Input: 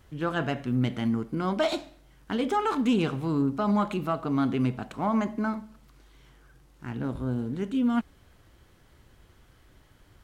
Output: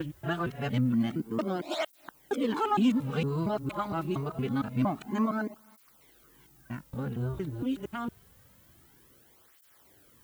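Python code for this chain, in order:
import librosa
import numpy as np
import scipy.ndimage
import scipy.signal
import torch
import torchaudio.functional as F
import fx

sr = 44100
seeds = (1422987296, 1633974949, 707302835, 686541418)

y = fx.local_reverse(x, sr, ms=231.0)
y = fx.dmg_noise_colour(y, sr, seeds[0], colour='violet', level_db=-59.0)
y = fx.flanger_cancel(y, sr, hz=0.26, depth_ms=4.7)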